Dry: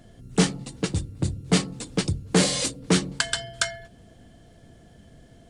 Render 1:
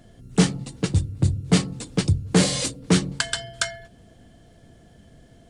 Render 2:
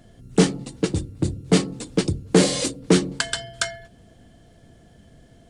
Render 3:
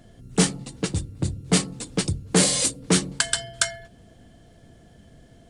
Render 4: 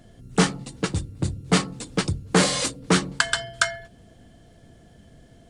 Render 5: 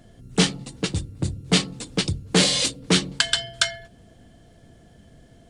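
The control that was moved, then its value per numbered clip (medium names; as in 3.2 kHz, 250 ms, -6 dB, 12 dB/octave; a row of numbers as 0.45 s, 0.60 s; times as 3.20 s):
dynamic bell, frequency: 100 Hz, 350 Hz, 9.5 kHz, 1.2 kHz, 3.4 kHz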